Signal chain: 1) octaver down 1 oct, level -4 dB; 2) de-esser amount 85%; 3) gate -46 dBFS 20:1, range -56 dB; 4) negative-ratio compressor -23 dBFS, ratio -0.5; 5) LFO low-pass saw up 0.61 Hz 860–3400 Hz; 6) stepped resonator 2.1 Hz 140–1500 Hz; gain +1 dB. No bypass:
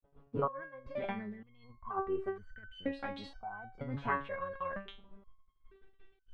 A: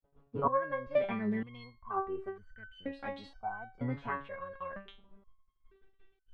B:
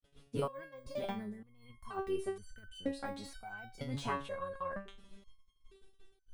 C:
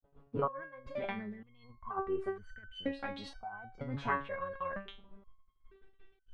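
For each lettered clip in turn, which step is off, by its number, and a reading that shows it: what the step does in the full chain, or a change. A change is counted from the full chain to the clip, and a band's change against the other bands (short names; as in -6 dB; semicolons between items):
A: 4, momentary loudness spread change -2 LU; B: 5, 2 kHz band -4.0 dB; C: 2, 4 kHz band +3.5 dB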